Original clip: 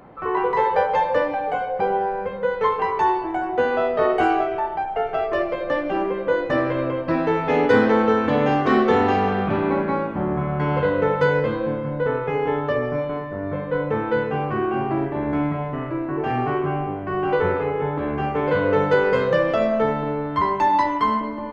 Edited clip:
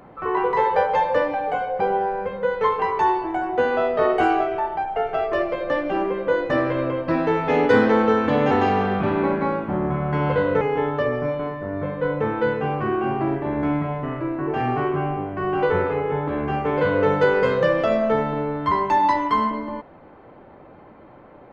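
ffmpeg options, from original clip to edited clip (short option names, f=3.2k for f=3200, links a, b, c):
-filter_complex "[0:a]asplit=3[a][b][c];[a]atrim=end=8.512[d];[b]atrim=start=8.978:end=11.082[e];[c]atrim=start=12.308[f];[d][e]acrossfade=d=0.004:c1=hsin:c2=hsin[g];[g][f]acrossfade=d=0.004:c1=hsin:c2=hsin"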